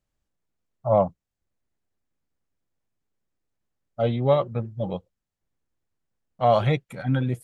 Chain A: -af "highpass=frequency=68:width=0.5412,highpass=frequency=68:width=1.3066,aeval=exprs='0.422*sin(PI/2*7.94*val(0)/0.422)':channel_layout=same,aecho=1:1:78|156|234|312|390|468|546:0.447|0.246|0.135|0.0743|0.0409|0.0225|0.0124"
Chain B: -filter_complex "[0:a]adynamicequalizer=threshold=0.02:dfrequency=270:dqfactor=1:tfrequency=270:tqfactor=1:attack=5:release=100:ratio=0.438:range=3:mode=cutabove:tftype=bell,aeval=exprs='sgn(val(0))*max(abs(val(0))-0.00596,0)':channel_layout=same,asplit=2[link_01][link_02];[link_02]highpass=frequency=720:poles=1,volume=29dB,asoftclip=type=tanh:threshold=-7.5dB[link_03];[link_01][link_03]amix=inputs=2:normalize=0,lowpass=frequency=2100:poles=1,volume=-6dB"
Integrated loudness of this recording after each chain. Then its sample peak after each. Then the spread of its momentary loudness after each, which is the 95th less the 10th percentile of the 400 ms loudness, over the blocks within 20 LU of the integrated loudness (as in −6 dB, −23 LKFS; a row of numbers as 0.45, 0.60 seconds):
−12.0, −19.0 LKFS; −2.5, −8.0 dBFS; 12, 7 LU